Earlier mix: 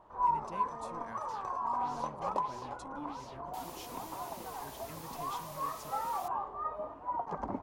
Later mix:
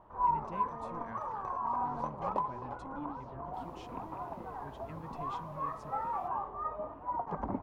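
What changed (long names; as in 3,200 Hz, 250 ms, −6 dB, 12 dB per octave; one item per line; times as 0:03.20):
second sound −11.5 dB
master: add bass and treble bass +5 dB, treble −14 dB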